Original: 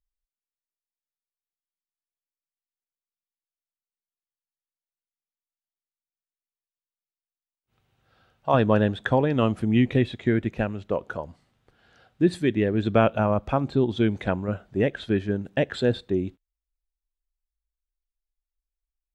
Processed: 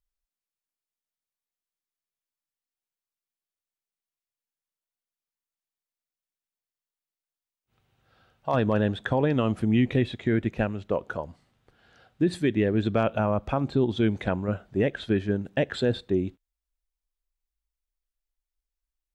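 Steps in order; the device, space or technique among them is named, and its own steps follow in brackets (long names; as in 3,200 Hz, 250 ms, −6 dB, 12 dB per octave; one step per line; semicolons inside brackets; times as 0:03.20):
clipper into limiter (hard clipping −8.5 dBFS, distortion −39 dB; brickwall limiter −14 dBFS, peak gain reduction 5.5 dB)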